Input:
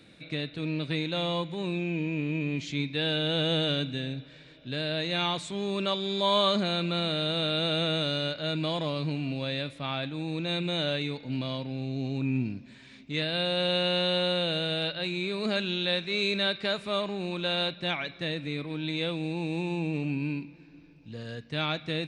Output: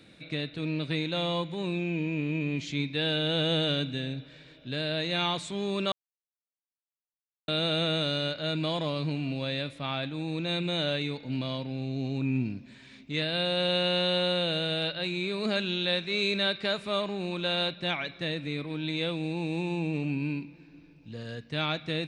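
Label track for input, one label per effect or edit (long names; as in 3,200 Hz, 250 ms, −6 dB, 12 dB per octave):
5.920000	7.480000	silence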